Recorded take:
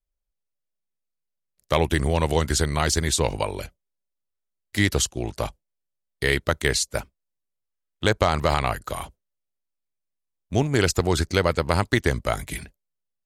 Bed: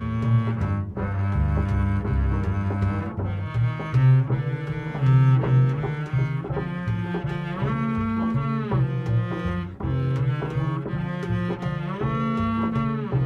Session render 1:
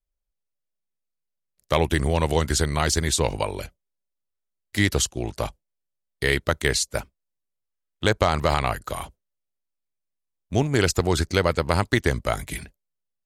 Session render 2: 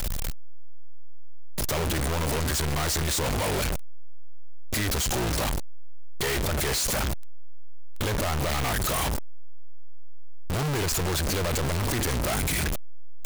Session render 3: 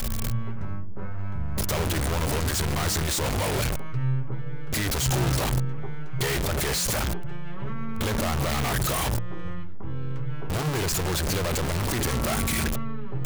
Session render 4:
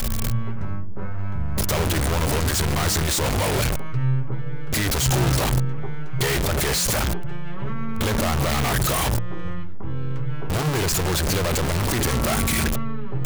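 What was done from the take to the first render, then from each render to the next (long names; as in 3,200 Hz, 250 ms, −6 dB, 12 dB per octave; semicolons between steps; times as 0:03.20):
no processing that can be heard
sign of each sample alone
mix in bed −9.5 dB
level +4 dB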